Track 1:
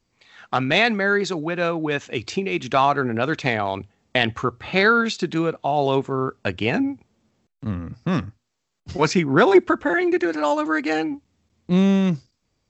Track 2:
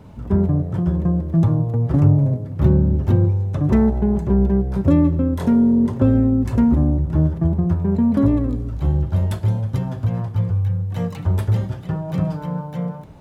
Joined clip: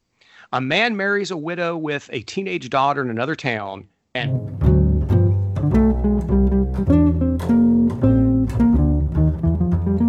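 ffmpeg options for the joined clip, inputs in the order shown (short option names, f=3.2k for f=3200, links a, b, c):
-filter_complex "[0:a]asplit=3[a][b][c];[a]afade=t=out:st=3.57:d=0.02[d];[b]flanger=delay=1.2:depth=9.4:regen=-81:speed=0.6:shape=sinusoidal,afade=t=in:st=3.57:d=0.02,afade=t=out:st=4.35:d=0.02[e];[c]afade=t=in:st=4.35:d=0.02[f];[d][e][f]amix=inputs=3:normalize=0,apad=whole_dur=10.08,atrim=end=10.08,atrim=end=4.35,asetpts=PTS-STARTPTS[g];[1:a]atrim=start=2.17:end=8.06,asetpts=PTS-STARTPTS[h];[g][h]acrossfade=d=0.16:c1=tri:c2=tri"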